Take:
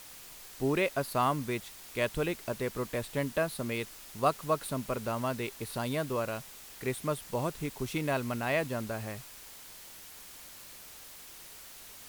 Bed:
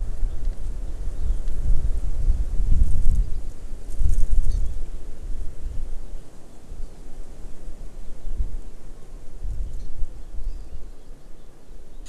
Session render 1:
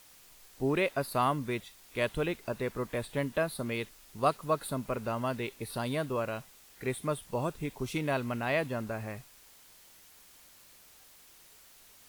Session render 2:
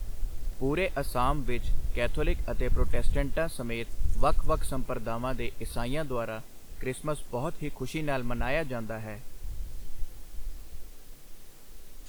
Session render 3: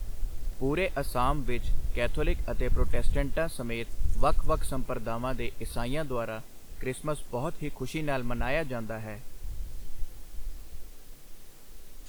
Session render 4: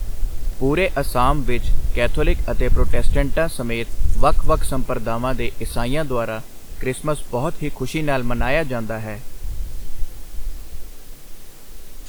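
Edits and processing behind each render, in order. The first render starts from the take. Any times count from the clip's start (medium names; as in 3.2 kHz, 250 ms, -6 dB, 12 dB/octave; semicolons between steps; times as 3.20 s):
noise print and reduce 8 dB
add bed -8.5 dB
no audible change
trim +10 dB; peak limiter -3 dBFS, peak gain reduction 2 dB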